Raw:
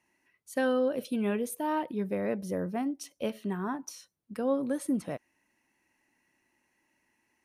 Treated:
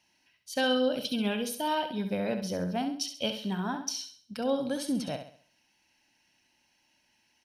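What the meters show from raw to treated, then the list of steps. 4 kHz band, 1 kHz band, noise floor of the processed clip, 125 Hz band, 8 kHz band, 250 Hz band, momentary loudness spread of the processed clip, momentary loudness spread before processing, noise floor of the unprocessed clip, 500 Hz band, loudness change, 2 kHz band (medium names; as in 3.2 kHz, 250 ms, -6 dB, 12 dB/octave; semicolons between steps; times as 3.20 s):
+15.0 dB, +2.0 dB, -71 dBFS, +2.0 dB, +5.5 dB, 0.0 dB, 8 LU, 10 LU, -77 dBFS, -0.5 dB, +0.5 dB, +3.5 dB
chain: high-order bell 4 kHz +13 dB 1.3 oct; comb 1.3 ms, depth 42%; on a send: flutter echo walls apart 11.4 m, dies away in 0.48 s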